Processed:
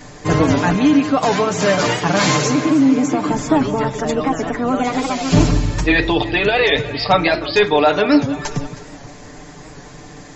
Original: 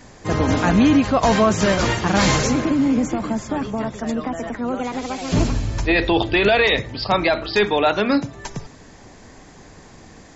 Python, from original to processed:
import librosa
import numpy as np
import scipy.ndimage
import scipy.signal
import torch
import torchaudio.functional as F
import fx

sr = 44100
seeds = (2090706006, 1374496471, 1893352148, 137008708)

y = fx.highpass(x, sr, hz=150.0, slope=12, at=(0.74, 3.29))
y = fx.echo_alternate(y, sr, ms=158, hz=930.0, feedback_pct=59, wet_db=-12.5)
y = fx.rider(y, sr, range_db=4, speed_s=0.5)
y = y + 0.64 * np.pad(y, (int(6.8 * sr / 1000.0), 0))[:len(y)]
y = fx.record_warp(y, sr, rpm=78.0, depth_cents=100.0)
y = y * 10.0 ** (2.0 / 20.0)